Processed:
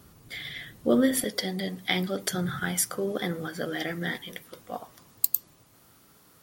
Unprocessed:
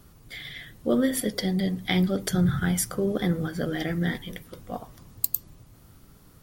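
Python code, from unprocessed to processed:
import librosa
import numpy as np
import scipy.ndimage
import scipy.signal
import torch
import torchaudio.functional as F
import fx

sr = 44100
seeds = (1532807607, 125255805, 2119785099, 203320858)

y = fx.highpass(x, sr, hz=fx.steps((0.0, 97.0), (1.24, 510.0)), slope=6)
y = F.gain(torch.from_numpy(y), 1.5).numpy()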